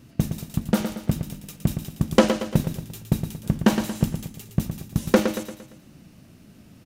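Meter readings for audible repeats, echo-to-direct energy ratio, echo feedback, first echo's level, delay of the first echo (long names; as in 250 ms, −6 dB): 4, −7.0 dB, 45%, −8.0 dB, 115 ms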